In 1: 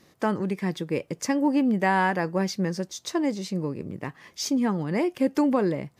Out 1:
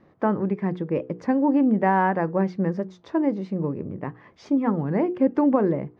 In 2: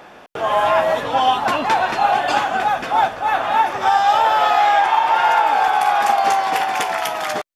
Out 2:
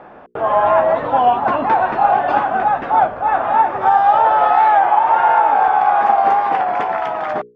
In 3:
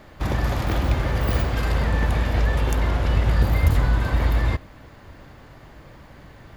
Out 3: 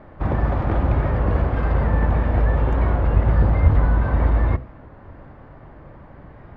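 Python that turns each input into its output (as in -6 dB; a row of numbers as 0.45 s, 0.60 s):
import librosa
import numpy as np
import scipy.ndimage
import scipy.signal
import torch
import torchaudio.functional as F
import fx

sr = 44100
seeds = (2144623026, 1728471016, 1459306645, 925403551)

y = scipy.signal.sosfilt(scipy.signal.butter(2, 1300.0, 'lowpass', fs=sr, output='sos'), x)
y = fx.hum_notches(y, sr, base_hz=60, count=8)
y = fx.record_warp(y, sr, rpm=33.33, depth_cents=100.0)
y = y * librosa.db_to_amplitude(3.5)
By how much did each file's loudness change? +2.5 LU, +2.0 LU, +2.5 LU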